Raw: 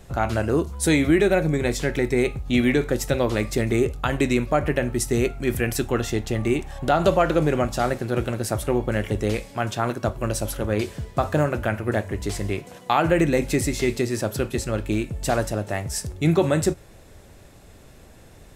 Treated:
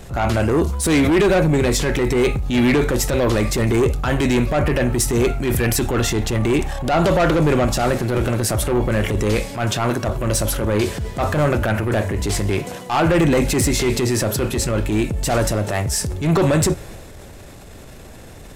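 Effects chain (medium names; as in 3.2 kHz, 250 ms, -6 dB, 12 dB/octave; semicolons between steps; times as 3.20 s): saturation -19.5 dBFS, distortion -10 dB; transient shaper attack -8 dB, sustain +4 dB; trim +9 dB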